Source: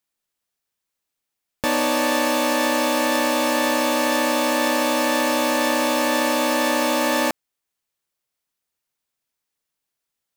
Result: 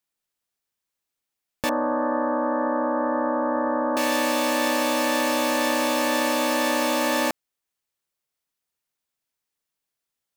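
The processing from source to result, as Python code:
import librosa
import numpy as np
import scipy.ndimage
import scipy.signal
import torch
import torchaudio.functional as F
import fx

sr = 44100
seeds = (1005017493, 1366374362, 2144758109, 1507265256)

y = fx.steep_lowpass(x, sr, hz=1600.0, slope=72, at=(1.69, 3.97))
y = y * 10.0 ** (-2.5 / 20.0)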